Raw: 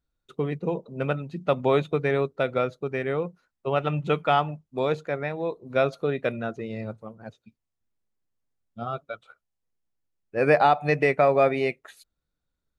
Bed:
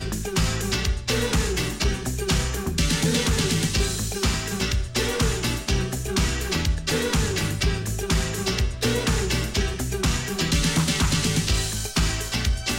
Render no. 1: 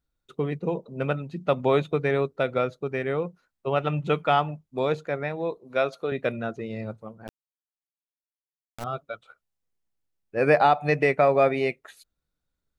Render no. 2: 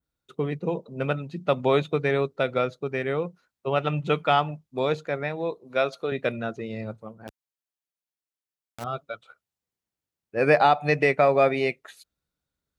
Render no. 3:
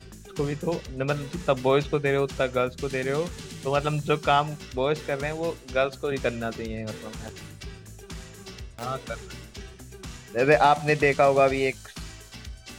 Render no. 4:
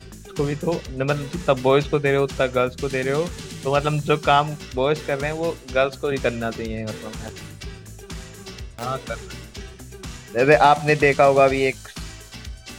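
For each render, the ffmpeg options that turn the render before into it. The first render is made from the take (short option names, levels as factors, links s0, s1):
-filter_complex "[0:a]asettb=1/sr,asplit=3[s0][s1][s2];[s0]atrim=end=5.584[s3];[s1]atrim=start=5.58:end=6.12,asetpts=PTS-STARTPTS,afade=t=in:d=0.004:c=qsin,afade=t=out:st=0.536:d=0.004:c=qsin,highpass=f=420:p=1[s4];[s2]atrim=start=6.116[s5];[s3][s4]acrossfade=d=0.004:c1=hsin:c2=qsin[s6];[s6][s5]acrossfade=d=0.004:c1=qsin:c2=hsin,asettb=1/sr,asplit=3[s7][s8][s9];[s7]atrim=end=7.274[s10];[s8]atrim=start=7.27:end=8.84,asetpts=PTS-STARTPTS,afade=t=in:d=0.004:c=qsin,afade=t=out:st=1.566:d=0.004:c=qsin,acrusher=bits=3:dc=4:mix=0:aa=0.000001[s11];[s9]atrim=start=8.836[s12];[s10][s11]acrossfade=d=0.004:c1=hsin:c2=qsin[s13];[s13][s12]acrossfade=d=0.004:c1=qsin:c2=hsin"
-af "adynamicequalizer=threshold=0.00794:dfrequency=4400:dqfactor=0.71:tfrequency=4400:tqfactor=0.71:attack=5:release=100:ratio=0.375:range=2:mode=boostabove:tftype=bell,highpass=58"
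-filter_complex "[1:a]volume=0.141[s0];[0:a][s0]amix=inputs=2:normalize=0"
-af "volume=1.68"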